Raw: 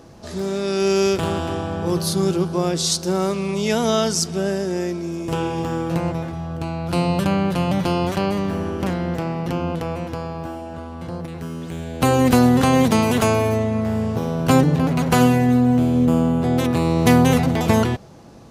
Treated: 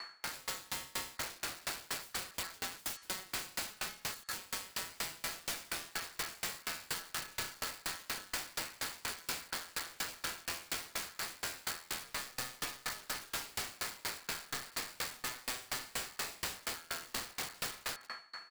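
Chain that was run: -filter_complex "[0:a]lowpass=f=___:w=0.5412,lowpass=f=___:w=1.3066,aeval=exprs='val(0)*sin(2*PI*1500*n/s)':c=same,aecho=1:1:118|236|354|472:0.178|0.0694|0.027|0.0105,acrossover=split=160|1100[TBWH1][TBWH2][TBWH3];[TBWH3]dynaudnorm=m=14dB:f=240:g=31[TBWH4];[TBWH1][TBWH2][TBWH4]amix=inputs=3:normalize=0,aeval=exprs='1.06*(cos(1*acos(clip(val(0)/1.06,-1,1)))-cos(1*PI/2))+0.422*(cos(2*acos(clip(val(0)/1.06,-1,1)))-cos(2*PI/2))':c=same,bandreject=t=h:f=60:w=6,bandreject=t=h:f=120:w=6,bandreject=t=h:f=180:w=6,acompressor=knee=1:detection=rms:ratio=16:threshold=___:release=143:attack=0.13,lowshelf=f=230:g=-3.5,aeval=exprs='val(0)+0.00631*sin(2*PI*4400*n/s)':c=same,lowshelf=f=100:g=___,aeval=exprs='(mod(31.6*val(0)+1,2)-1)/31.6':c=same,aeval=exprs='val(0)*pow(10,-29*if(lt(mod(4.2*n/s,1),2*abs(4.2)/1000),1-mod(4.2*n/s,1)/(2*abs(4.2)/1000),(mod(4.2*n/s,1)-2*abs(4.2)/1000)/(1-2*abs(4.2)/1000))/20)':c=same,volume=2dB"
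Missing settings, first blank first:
12000, 12000, -23dB, -5.5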